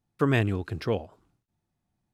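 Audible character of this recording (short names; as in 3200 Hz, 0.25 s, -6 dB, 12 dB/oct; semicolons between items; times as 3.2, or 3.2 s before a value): noise floor -82 dBFS; spectral tilt -6.5 dB/oct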